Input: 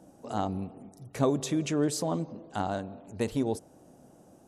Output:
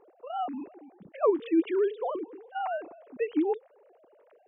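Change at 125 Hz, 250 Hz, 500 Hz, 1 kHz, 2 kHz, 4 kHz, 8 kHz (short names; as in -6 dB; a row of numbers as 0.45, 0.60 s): under -25 dB, -0.5 dB, +3.5 dB, +1.5 dB, 0.0 dB, -9.0 dB, under -40 dB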